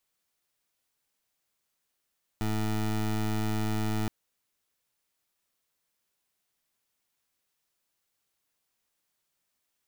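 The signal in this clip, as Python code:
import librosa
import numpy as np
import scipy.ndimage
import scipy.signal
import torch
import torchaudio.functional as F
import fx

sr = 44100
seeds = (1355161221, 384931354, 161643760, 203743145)

y = fx.pulse(sr, length_s=1.67, hz=108.0, level_db=-28.5, duty_pct=20)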